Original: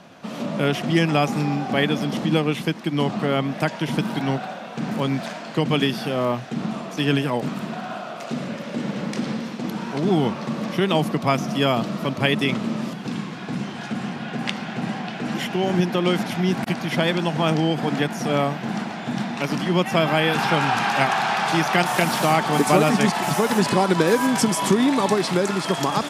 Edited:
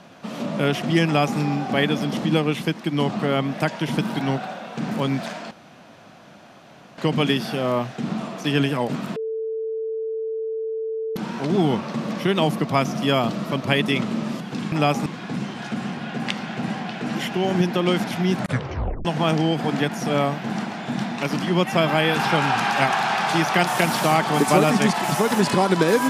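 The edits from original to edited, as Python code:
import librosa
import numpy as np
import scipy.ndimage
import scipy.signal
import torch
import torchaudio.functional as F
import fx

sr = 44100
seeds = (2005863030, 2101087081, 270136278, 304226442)

y = fx.edit(x, sr, fx.duplicate(start_s=1.05, length_s=0.34, to_s=13.25),
    fx.insert_room_tone(at_s=5.51, length_s=1.47),
    fx.bleep(start_s=7.69, length_s=2.0, hz=444.0, db=-24.0),
    fx.tape_stop(start_s=16.55, length_s=0.69), tone=tone)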